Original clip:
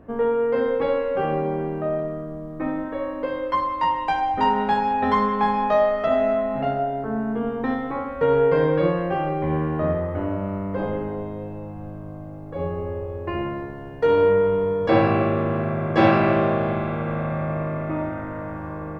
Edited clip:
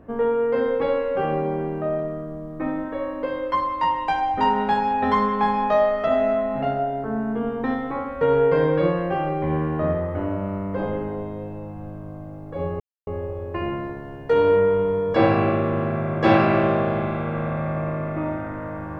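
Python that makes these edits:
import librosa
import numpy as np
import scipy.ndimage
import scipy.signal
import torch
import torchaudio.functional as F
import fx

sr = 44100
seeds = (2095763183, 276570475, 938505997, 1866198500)

y = fx.edit(x, sr, fx.insert_silence(at_s=12.8, length_s=0.27), tone=tone)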